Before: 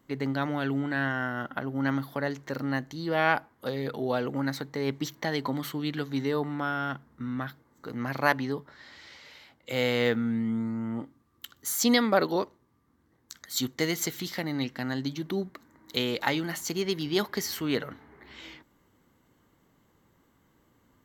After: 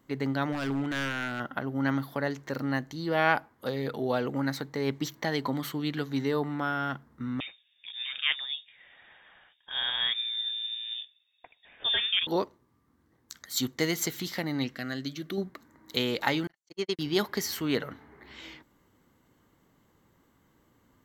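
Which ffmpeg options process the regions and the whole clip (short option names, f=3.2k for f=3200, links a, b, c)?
-filter_complex "[0:a]asettb=1/sr,asplit=3[a][b][c];[a]atrim=end=0.524[d];[b]atrim=start=0.52:end=1.4,asetpts=PTS-STARTPTS,afade=t=in:d=0.004:c=qsin,afade=t=out:st=0.876:d=0.004:c=qsin,lowpass=11k,aeval=exprs='0.0668*(abs(mod(val(0)/0.0668+3,4)-2)-1)':c=same[e];[c]atrim=start=1.396[f];[d][e]acrossfade=d=0.004:c1=hsin:c2=qsin[g];[g][f]acrossfade=d=0.004:c1=qsin:c2=hsin,asettb=1/sr,asplit=3[h][i][j];[h]atrim=end=7.404[k];[i]atrim=start=7.4:end=12.27,asetpts=PTS-STARTPTS,afade=t=in:d=0.004:c=qsin,afade=t=out:st=4.866:d=0.004:c=qsin,flanger=delay=1.9:depth=9.9:regen=66:speed=1.9:shape=sinusoidal,lowpass=f=3.2k:t=q:w=0.5098,lowpass=f=3.2k:t=q:w=0.6013,lowpass=f=3.2k:t=q:w=0.9,lowpass=f=3.2k:t=q:w=2.563,afreqshift=-3800[l];[j]atrim=start=12.266[m];[k][l]acrossfade=d=0.004:c1=hsin:c2=qsin[n];[n][m]acrossfade=d=0.004:c1=qsin:c2=hsin,asettb=1/sr,asplit=3[o][p][q];[o]atrim=end=14.754[r];[p]atrim=start=14.75:end=15.38,asetpts=PTS-STARTPTS,afade=t=in:d=0.004:c=qsin,afade=t=out:st=0.626:d=0.004:c=qsin,asuperstop=centerf=910:order=4:qfactor=2.6,lowshelf=f=460:g=-5.5[s];[q]atrim=start=15.376[t];[r][s]acrossfade=d=0.004:c1=hsin:c2=qsin[u];[u][t]acrossfade=d=0.004:c1=qsin:c2=hsin,asettb=1/sr,asplit=3[v][w][x];[v]atrim=end=16.474[y];[w]atrim=start=16.47:end=16.99,asetpts=PTS-STARTPTS,afade=t=in:d=0.004:c=qsin,afade=t=out:st=0.516:d=0.004:c=qsin,lowpass=8.4k,bass=f=250:g=-7,treble=f=4k:g=-1,agate=range=-55dB:threshold=-31dB:ratio=16:release=100:detection=peak[z];[x]atrim=start=16.986[aa];[y][z]acrossfade=d=0.004:c1=hsin:c2=qsin[ab];[ab][aa]acrossfade=d=0.004:c1=qsin:c2=hsin"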